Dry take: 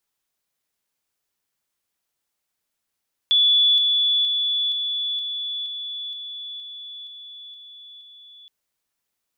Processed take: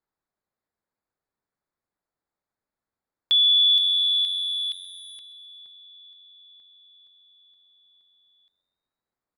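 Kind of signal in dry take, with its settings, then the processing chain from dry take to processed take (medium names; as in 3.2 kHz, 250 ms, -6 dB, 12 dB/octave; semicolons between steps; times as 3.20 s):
level ladder 3.44 kHz -13.5 dBFS, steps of -3 dB, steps 11, 0.47 s 0.00 s
local Wiener filter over 15 samples; frequency-shifting echo 131 ms, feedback 55%, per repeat +91 Hz, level -18 dB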